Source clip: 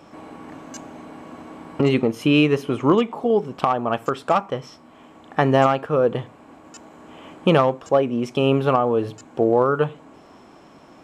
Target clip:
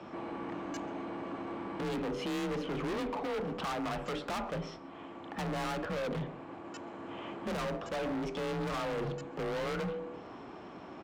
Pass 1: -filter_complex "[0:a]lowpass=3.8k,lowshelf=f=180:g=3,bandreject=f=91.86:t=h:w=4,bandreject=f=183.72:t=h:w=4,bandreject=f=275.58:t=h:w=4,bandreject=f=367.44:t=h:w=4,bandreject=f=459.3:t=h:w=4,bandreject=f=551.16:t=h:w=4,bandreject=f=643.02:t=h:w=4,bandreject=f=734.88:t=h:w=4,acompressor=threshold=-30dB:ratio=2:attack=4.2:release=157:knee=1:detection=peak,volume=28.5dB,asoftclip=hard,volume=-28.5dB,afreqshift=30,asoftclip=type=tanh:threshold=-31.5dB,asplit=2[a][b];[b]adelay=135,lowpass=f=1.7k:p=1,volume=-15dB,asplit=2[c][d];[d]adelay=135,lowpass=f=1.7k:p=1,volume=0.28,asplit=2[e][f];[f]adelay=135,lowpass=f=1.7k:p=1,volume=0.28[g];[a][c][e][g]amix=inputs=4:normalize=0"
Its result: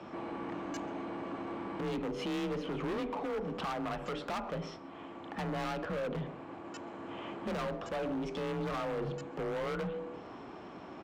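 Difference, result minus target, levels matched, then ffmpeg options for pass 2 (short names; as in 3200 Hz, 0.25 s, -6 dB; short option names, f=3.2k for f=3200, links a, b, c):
compressor: peak gain reduction +6 dB
-filter_complex "[0:a]lowpass=3.8k,lowshelf=f=180:g=3,bandreject=f=91.86:t=h:w=4,bandreject=f=183.72:t=h:w=4,bandreject=f=275.58:t=h:w=4,bandreject=f=367.44:t=h:w=4,bandreject=f=459.3:t=h:w=4,bandreject=f=551.16:t=h:w=4,bandreject=f=643.02:t=h:w=4,bandreject=f=734.88:t=h:w=4,acompressor=threshold=-18.5dB:ratio=2:attack=4.2:release=157:knee=1:detection=peak,volume=28.5dB,asoftclip=hard,volume=-28.5dB,afreqshift=30,asoftclip=type=tanh:threshold=-31.5dB,asplit=2[a][b];[b]adelay=135,lowpass=f=1.7k:p=1,volume=-15dB,asplit=2[c][d];[d]adelay=135,lowpass=f=1.7k:p=1,volume=0.28,asplit=2[e][f];[f]adelay=135,lowpass=f=1.7k:p=1,volume=0.28[g];[a][c][e][g]amix=inputs=4:normalize=0"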